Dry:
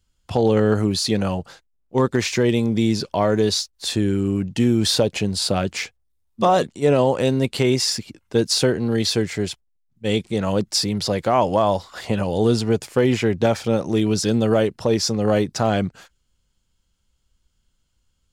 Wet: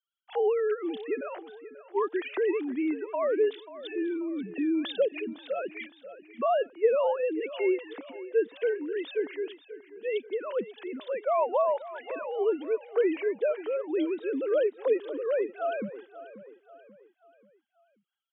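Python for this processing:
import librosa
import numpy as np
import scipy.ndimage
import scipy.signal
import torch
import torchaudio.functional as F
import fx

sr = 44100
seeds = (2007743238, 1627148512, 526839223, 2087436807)

p1 = fx.sine_speech(x, sr)
p2 = scipy.signal.sosfilt(scipy.signal.butter(2, 270.0, 'highpass', fs=sr, output='sos'), p1)
p3 = p2 + fx.echo_feedback(p2, sr, ms=536, feedback_pct=43, wet_db=-15.5, dry=0)
y = p3 * librosa.db_to_amplitude(-8.5)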